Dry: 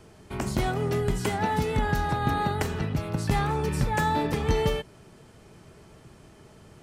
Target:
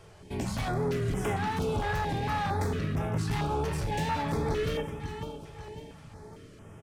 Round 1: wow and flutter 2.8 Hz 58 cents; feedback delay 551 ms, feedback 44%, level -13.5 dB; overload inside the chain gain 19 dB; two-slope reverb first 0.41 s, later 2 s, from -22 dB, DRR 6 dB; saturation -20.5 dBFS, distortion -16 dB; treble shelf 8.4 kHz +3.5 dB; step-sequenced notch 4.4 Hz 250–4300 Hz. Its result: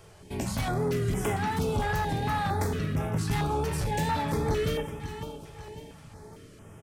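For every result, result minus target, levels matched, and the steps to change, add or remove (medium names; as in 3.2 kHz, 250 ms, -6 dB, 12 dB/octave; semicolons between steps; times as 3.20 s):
overload inside the chain: distortion -9 dB; 8 kHz band +3.0 dB
change: overload inside the chain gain 25.5 dB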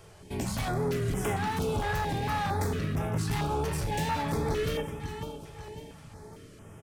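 8 kHz band +4.0 dB
change: treble shelf 8.4 kHz -6 dB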